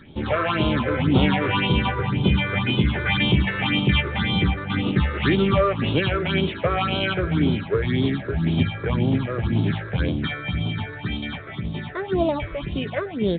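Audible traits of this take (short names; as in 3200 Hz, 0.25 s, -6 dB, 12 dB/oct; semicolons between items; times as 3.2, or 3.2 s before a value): a buzz of ramps at a fixed pitch in blocks of 8 samples; phasing stages 6, 1.9 Hz, lowest notch 210–1800 Hz; µ-law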